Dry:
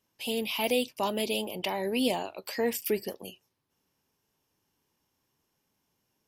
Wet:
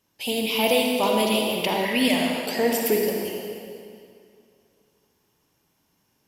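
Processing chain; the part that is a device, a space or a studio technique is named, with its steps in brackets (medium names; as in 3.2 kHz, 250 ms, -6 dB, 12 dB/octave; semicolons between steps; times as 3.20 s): stairwell (reverberation RT60 2.4 s, pre-delay 44 ms, DRR 0 dB); 1.85–2.47 s: graphic EQ with 31 bands 400 Hz -12 dB, 800 Hz -8 dB, 2 kHz +11 dB; trim +5.5 dB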